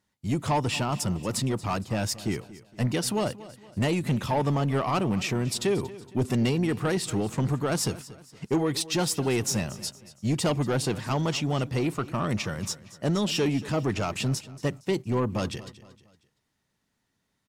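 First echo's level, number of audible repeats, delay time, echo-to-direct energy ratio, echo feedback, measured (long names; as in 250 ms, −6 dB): −17.5 dB, 3, 232 ms, −16.5 dB, 42%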